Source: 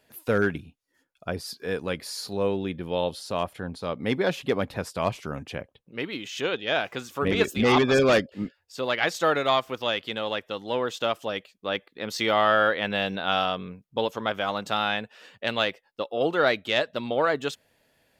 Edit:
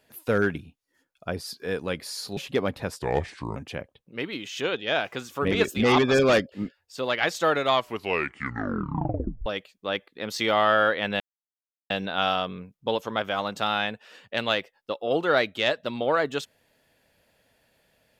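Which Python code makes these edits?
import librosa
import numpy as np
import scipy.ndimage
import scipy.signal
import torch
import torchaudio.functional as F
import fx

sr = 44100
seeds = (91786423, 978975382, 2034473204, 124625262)

y = fx.edit(x, sr, fx.cut(start_s=2.37, length_s=1.94),
    fx.speed_span(start_s=4.96, length_s=0.4, speed=0.74),
    fx.tape_stop(start_s=9.53, length_s=1.73),
    fx.insert_silence(at_s=13.0, length_s=0.7), tone=tone)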